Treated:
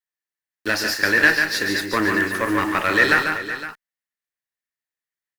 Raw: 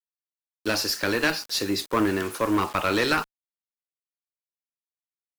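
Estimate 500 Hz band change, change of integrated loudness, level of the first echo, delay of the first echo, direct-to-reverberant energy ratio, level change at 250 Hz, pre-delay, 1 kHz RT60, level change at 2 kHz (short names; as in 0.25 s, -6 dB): +1.5 dB, +6.0 dB, -6.0 dB, 0.144 s, none, +2.0 dB, none, none, +11.5 dB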